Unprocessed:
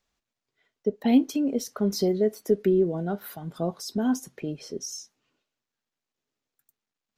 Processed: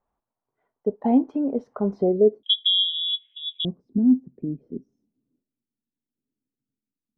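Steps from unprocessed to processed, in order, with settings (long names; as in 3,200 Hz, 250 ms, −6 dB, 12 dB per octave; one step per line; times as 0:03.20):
low-pass filter sweep 920 Hz → 260 Hz, 0:01.91–0:02.56
0:02.43–0:03.65: voice inversion scrambler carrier 3,600 Hz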